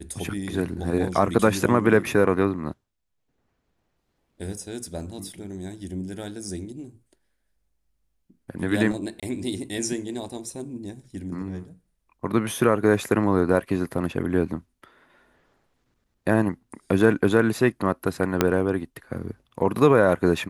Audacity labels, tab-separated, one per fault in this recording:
9.200000	9.230000	gap 26 ms
18.410000	18.410000	pop -3 dBFS

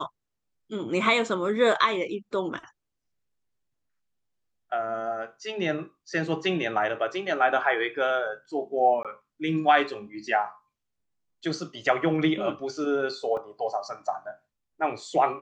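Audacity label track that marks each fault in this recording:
9.030000	9.050000	gap 17 ms
13.370000	13.370000	gap 2 ms

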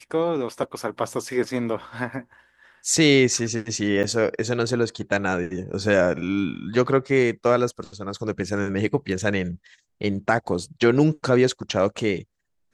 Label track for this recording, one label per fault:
4.030000	4.040000	gap 8.3 ms

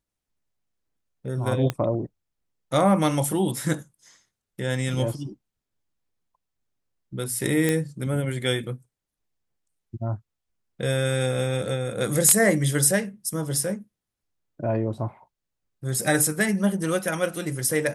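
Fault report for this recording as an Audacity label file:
1.700000	1.700000	pop -11 dBFS
7.690000	7.690000	pop -9 dBFS

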